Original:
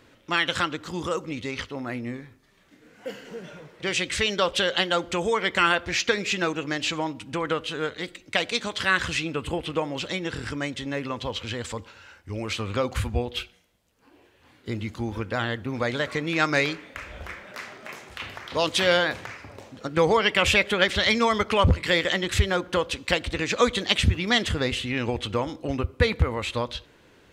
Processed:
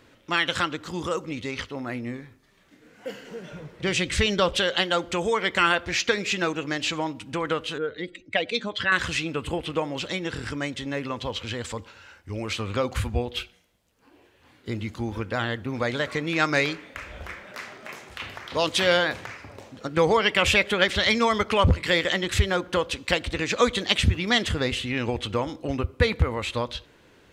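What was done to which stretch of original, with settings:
3.51–4.57 low shelf 200 Hz +12 dB
7.78–8.92 spectral contrast raised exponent 1.7

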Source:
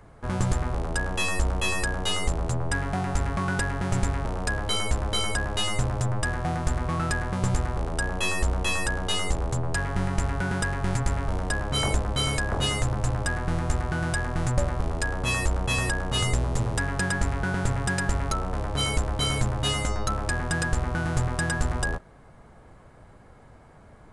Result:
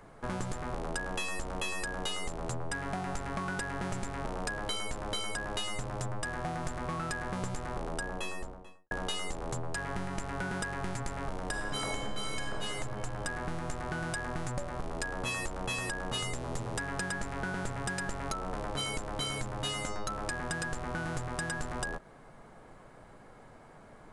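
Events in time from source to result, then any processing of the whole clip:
7.7–8.91 studio fade out
11.47–12.56 reverb throw, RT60 2.5 s, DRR 0.5 dB
whole clip: bell 66 Hz -14.5 dB 1.4 oct; compressor, threshold -32 dBFS

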